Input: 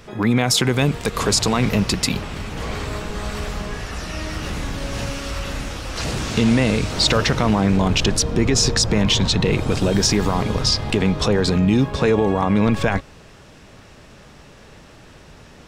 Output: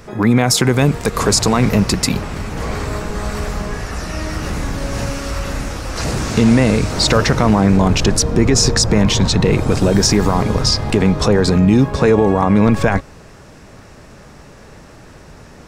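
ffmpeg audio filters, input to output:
-af "equalizer=f=3.2k:w=1.6:g=-7.5,volume=5dB"

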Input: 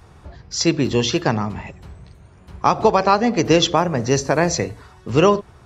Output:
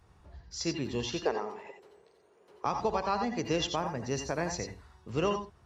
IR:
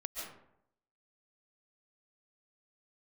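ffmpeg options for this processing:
-filter_complex "[0:a]asettb=1/sr,asplit=3[a][b][c];[a]atrim=end=1.254[d];[b]atrim=start=1.25:end=2.65,asetpts=PTS-STARTPTS,afade=t=in:d=0.004:c=qsin,afade=t=out:st=1.396:d=0.004:c=qsin,highpass=f=430:t=q:w=5[e];[c]atrim=start=2.646[f];[d][e]acrossfade=d=0.004:c1=hsin:c2=qsin[g];[g][f]acrossfade=d=0.004:c1=qsin:c2=hsin[h];[1:a]atrim=start_sample=2205,atrim=end_sample=6174,asetrate=66150,aresample=44100[i];[h][i]afir=irnorm=-1:irlink=0,volume=-8dB"

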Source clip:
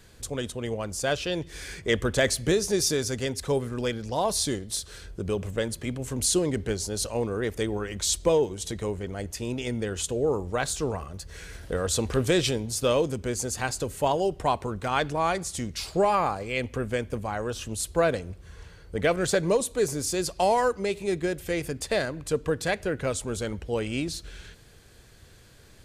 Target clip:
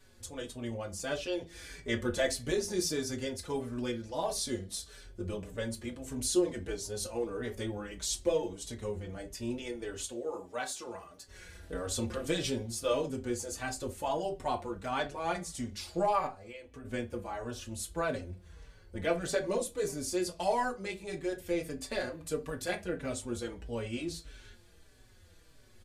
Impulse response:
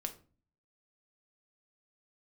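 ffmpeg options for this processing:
-filter_complex "[0:a]asettb=1/sr,asplit=3[a][b][c];[a]atrim=end=10.074[d];[b]atrim=start=10.07:end=11.28,asetpts=PTS-STARTPTS,afade=t=in:d=0.004:c=qsin,afade=t=out:st=1.206:d=0.004:c=qsin,highpass=f=550:p=1[e];[c]atrim=start=11.276[f];[d][e]acrossfade=d=0.004:c1=hsin:c2=qsin[g];[g][f]acrossfade=d=0.004:c1=qsin:c2=hsin,asettb=1/sr,asplit=3[h][i][j];[h]atrim=end=16.264[k];[i]atrim=start=16.26:end=16.85,asetpts=PTS-STARTPTS,afade=t=in:d=0.004:c=qsin,afade=t=out:st=0.586:d=0.004:c=qsin,acompressor=threshold=-37dB:ratio=8[l];[j]atrim=start=16.846[m];[k][l]acrossfade=d=0.004:c1=hsin:c2=qsin[n];[n][m]acrossfade=d=0.004:c1=qsin:c2=hsin,asettb=1/sr,asplit=3[o][p][q];[o]atrim=end=22.124[r];[p]atrim=start=22.12:end=22.82,asetpts=PTS-STARTPTS,afade=t=in:d=0.004:c=qsin,afade=t=out:st=0.696:d=0.004:c=qsin,highshelf=f=11k:g=11[s];[q]atrim=start=22.816[t];[r][s]acrossfade=d=0.004:c1=hsin:c2=qsin[u];[u][t]acrossfade=d=0.004:c1=qsin:c2=hsin[v];[1:a]atrim=start_sample=2205,atrim=end_sample=6615,asetrate=70560,aresample=44100[w];[v][w]afir=irnorm=-1:irlink=0,asplit=2[x][y];[y]adelay=4.8,afreqshift=-1.6[z];[x][z]amix=inputs=2:normalize=1"

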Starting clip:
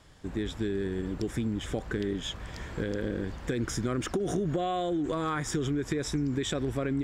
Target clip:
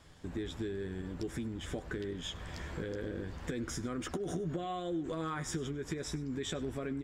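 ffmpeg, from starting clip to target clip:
-filter_complex "[0:a]acompressor=threshold=-36dB:ratio=2,asplit=2[a][b];[b]adelay=12,volume=-7.5dB[c];[a][c]amix=inputs=2:normalize=0,asplit=2[d][e];[e]adelay=99.13,volume=-19dB,highshelf=f=4k:g=-2.23[f];[d][f]amix=inputs=2:normalize=0,volume=-2.5dB"

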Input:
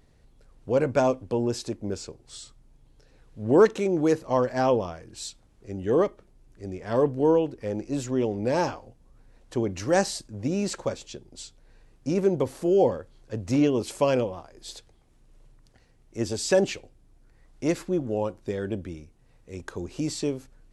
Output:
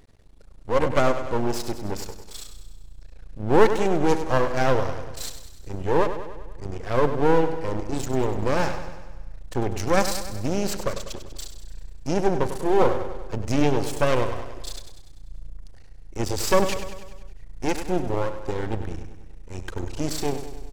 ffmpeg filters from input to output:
-filter_complex "[0:a]asubboost=boost=7.5:cutoff=54,aeval=exprs='max(val(0),0)':c=same,asplit=2[a][b];[b]aecho=0:1:98|196|294|392|490|588|686:0.299|0.176|0.104|0.0613|0.0362|0.0213|0.0126[c];[a][c]amix=inputs=2:normalize=0,volume=6.5dB"

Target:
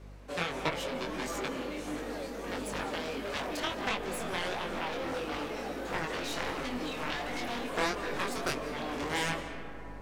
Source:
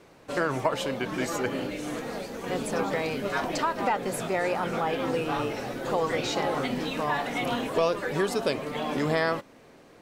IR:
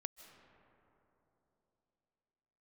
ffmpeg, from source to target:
-filter_complex "[0:a]highpass=f=190:w=0.5412,highpass=f=190:w=1.3066,aeval=exprs='val(0)+0.00501*(sin(2*PI*50*n/s)+sin(2*PI*2*50*n/s)/2+sin(2*PI*3*50*n/s)/3+sin(2*PI*4*50*n/s)/4+sin(2*PI*5*50*n/s)/5)':c=same,aeval=exprs='0.299*(cos(1*acos(clip(val(0)/0.299,-1,1)))-cos(1*PI/2))+0.106*(cos(7*acos(clip(val(0)/0.299,-1,1)))-cos(7*PI/2))':c=same,flanger=delay=19.5:depth=4.9:speed=1.5[a];[1:a]atrim=start_sample=2205,asetrate=40572,aresample=44100[b];[a][b]afir=irnorm=-1:irlink=0"

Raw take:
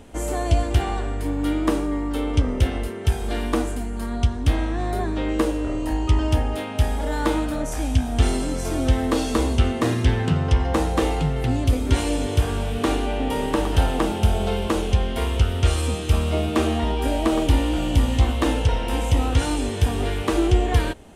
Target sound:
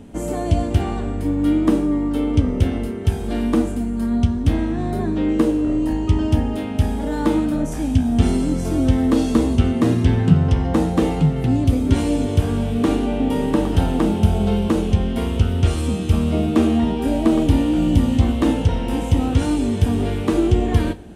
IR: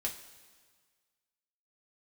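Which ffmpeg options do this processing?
-filter_complex "[0:a]equalizer=f=180:w=0.69:g=13.5,asplit=2[a][b];[1:a]atrim=start_sample=2205[c];[b][c]afir=irnorm=-1:irlink=0,volume=-7.5dB[d];[a][d]amix=inputs=2:normalize=0,volume=-6dB"

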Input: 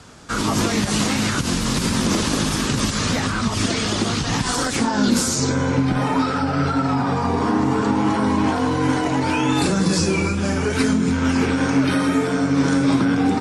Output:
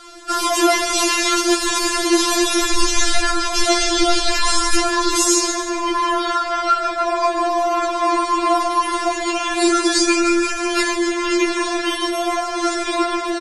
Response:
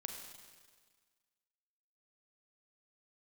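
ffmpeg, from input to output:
-filter_complex "[0:a]asplit=3[a][b][c];[a]afade=t=out:st=2.63:d=0.02[d];[b]asubboost=boost=11.5:cutoff=66,afade=t=in:st=2.63:d=0.02,afade=t=out:st=5.12:d=0.02[e];[c]afade=t=in:st=5.12:d=0.02[f];[d][e][f]amix=inputs=3:normalize=0,aecho=1:1:146|292|438|584:0.316|0.133|0.0558|0.0234,afftfilt=real='re*4*eq(mod(b,16),0)':imag='im*4*eq(mod(b,16),0)':win_size=2048:overlap=0.75,volume=7.5dB"

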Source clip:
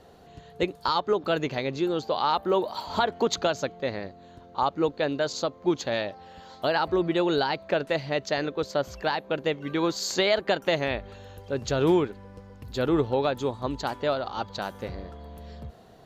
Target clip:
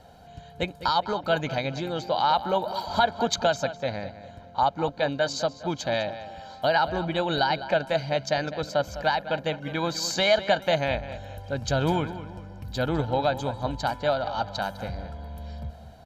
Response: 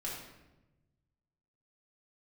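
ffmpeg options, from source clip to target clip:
-filter_complex "[0:a]aecho=1:1:1.3:0.69,asplit=2[a][b];[b]adelay=204,lowpass=f=3.9k:p=1,volume=-13dB,asplit=2[c][d];[d]adelay=204,lowpass=f=3.9k:p=1,volume=0.4,asplit=2[e][f];[f]adelay=204,lowpass=f=3.9k:p=1,volume=0.4,asplit=2[g][h];[h]adelay=204,lowpass=f=3.9k:p=1,volume=0.4[i];[a][c][e][g][i]amix=inputs=5:normalize=0"

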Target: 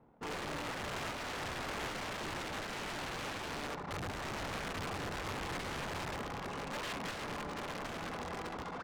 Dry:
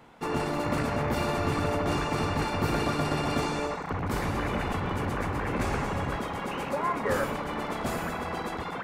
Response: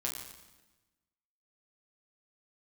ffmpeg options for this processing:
-filter_complex "[0:a]aemphasis=mode=production:type=cd,asplit=2[a][b];[b]adelay=523,lowpass=f=1.4k:p=1,volume=-13dB,asplit=2[c][d];[d]adelay=523,lowpass=f=1.4k:p=1,volume=0.35,asplit=2[e][f];[f]adelay=523,lowpass=f=1.4k:p=1,volume=0.35[g];[a][c][e][g]amix=inputs=4:normalize=0,aeval=exprs='(mod(17.8*val(0)+1,2)-1)/17.8':c=same,adynamicsmooth=sensitivity=6:basefreq=630,volume=-7.5dB"

